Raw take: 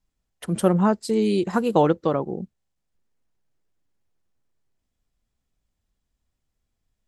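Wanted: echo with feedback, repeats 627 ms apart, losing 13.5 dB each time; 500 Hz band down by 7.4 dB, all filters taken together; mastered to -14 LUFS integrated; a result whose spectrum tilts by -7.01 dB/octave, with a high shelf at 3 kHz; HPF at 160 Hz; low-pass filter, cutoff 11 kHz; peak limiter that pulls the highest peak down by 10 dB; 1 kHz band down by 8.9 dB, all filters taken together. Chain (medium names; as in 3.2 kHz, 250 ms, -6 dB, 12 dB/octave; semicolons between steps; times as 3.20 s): high-pass 160 Hz; low-pass 11 kHz; peaking EQ 500 Hz -7 dB; peaking EQ 1 kHz -8.5 dB; treble shelf 3 kHz -5.5 dB; peak limiter -20.5 dBFS; feedback delay 627 ms, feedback 21%, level -13.5 dB; trim +16.5 dB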